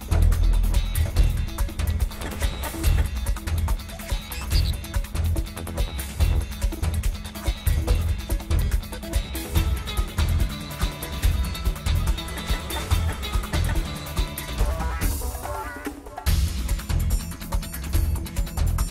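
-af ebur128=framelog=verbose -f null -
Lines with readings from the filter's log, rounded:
Integrated loudness:
  I:         -26.8 LUFS
  Threshold: -36.8 LUFS
Loudness range:
  LRA:         1.7 LU
  Threshold: -47.1 LUFS
  LRA low:   -27.9 LUFS
  LRA high:  -26.2 LUFS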